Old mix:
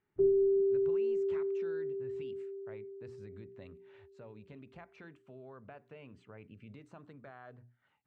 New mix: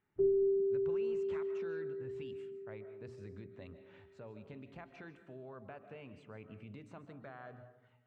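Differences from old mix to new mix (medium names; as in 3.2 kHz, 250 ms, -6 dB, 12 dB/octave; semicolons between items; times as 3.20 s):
background -3.5 dB; reverb: on, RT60 0.85 s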